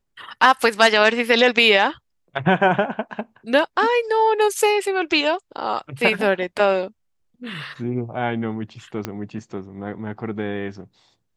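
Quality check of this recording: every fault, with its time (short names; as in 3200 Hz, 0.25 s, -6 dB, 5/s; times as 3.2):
9.05 pop -11 dBFS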